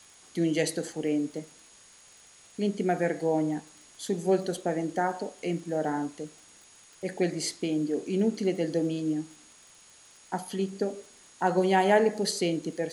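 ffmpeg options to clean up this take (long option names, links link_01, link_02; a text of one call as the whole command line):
ffmpeg -i in.wav -af "adeclick=threshold=4,bandreject=frequency=6700:width=30,afftdn=noise_reduction=18:noise_floor=-55" out.wav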